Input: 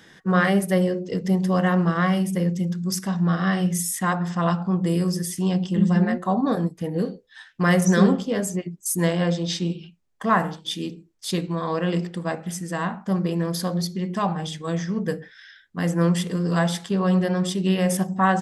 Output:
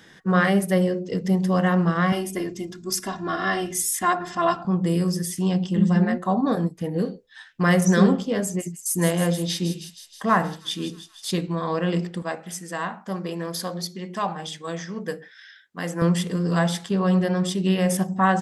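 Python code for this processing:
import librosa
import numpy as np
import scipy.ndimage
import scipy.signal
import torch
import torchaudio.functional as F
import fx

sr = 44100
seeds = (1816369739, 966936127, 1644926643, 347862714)

y = fx.comb(x, sr, ms=2.9, depth=0.86, at=(2.12, 4.65))
y = fx.echo_wet_highpass(y, sr, ms=159, feedback_pct=72, hz=4500.0, wet_db=-7.5, at=(8.42, 11.27))
y = fx.highpass(y, sr, hz=440.0, slope=6, at=(12.22, 16.02))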